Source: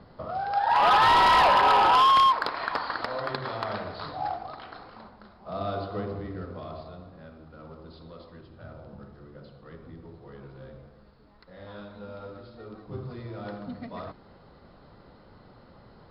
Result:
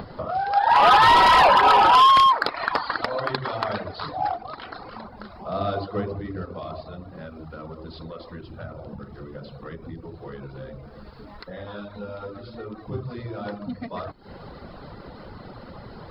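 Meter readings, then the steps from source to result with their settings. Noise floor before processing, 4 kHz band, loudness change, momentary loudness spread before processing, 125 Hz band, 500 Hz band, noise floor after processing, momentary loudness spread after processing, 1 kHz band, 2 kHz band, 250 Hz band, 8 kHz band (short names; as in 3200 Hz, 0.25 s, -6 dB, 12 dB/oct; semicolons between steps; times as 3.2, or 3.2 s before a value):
-54 dBFS, +4.5 dB, +4.5 dB, 23 LU, +5.0 dB, +5.0 dB, -44 dBFS, 24 LU, +4.5 dB, +5.0 dB, +5.0 dB, n/a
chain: upward compressor, threshold -36 dBFS; reverb removal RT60 0.77 s; gain +6.5 dB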